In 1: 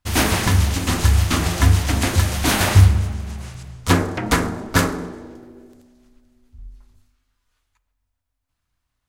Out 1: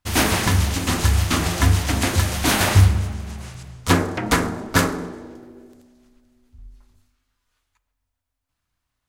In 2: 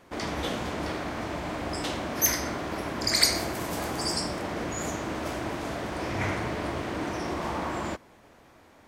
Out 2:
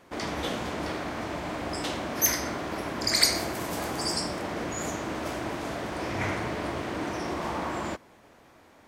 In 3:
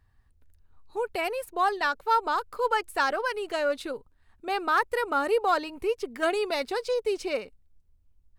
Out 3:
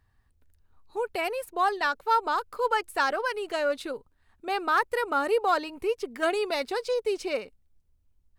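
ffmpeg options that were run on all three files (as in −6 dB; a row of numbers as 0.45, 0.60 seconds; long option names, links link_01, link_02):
-af "lowshelf=frequency=86:gain=-5"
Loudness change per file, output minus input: −1.5, 0.0, 0.0 LU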